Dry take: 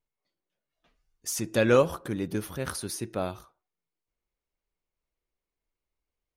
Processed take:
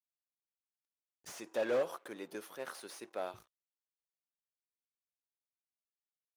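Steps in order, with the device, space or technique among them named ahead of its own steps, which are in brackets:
early transistor amplifier (dead-zone distortion −54 dBFS; slew-rate limiting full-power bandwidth 52 Hz)
0:01.32–0:03.34: Chebyshev high-pass filter 530 Hz, order 2
high-pass filter 91 Hz
level −6 dB

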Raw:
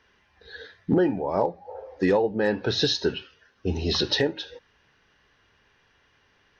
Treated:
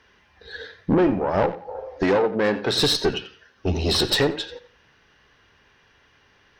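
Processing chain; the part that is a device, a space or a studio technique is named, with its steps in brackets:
rockabilly slapback (tube saturation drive 21 dB, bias 0.55; tape delay 89 ms, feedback 25%, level −13 dB, low-pass 4,700 Hz)
0:02.03–0:02.78: high-pass filter 210 Hz 6 dB per octave
level +7.5 dB

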